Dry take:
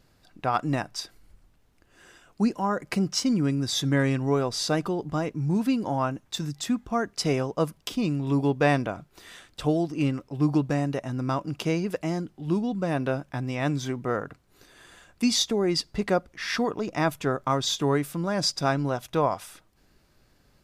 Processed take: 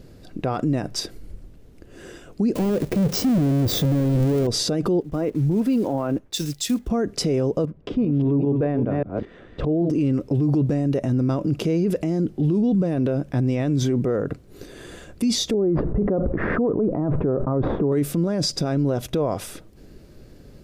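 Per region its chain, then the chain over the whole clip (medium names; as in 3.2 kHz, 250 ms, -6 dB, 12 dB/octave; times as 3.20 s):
2.55–4.47 s: square wave that keeps the level + de-esser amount 95% + treble shelf 3.8 kHz +8.5 dB
5.00–6.90 s: block-companded coder 5-bit + peaking EQ 150 Hz -8 dB 1.8 oct + three bands expanded up and down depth 100%
7.65–9.90 s: chunks repeated in reverse 197 ms, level -9 dB + low-pass 1.7 kHz + tremolo saw up 2.5 Hz, depth 70%
15.54–17.92 s: CVSD coder 64 kbps + low-pass 1.2 kHz 24 dB/octave + level flattener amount 50%
whole clip: resonant low shelf 650 Hz +9.5 dB, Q 1.5; peak limiter -22 dBFS; trim +7.5 dB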